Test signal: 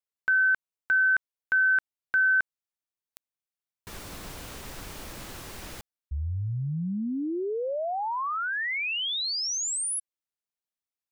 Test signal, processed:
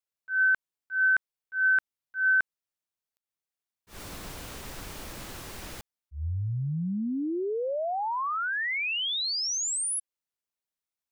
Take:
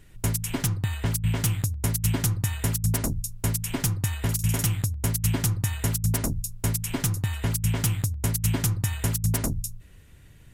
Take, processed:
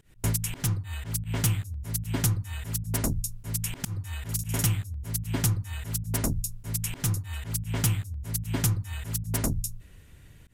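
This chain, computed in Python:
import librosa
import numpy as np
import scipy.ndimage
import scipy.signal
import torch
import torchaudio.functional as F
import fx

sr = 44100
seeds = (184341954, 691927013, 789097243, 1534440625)

y = fx.auto_swell(x, sr, attack_ms=144.0)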